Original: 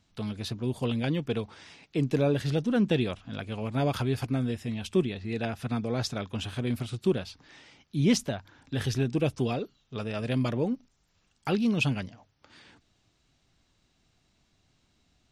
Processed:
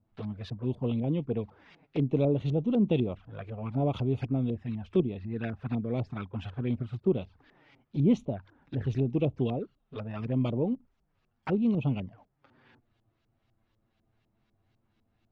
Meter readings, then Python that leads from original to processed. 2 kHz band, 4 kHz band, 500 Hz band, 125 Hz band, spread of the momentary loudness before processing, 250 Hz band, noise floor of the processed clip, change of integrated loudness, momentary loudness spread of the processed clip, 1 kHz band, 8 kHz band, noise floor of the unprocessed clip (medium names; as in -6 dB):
-10.5 dB, -12.0 dB, -1.0 dB, 0.0 dB, 11 LU, -0.5 dB, -76 dBFS, -1.0 dB, 12 LU, -4.5 dB, under -20 dB, -71 dBFS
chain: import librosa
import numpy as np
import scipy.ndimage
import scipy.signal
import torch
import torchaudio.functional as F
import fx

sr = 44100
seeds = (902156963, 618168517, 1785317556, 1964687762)

y = fx.env_flanger(x, sr, rest_ms=9.3, full_db=-25.0)
y = fx.filter_lfo_lowpass(y, sr, shape='saw_up', hz=4.0, low_hz=600.0, high_hz=3400.0, q=0.77)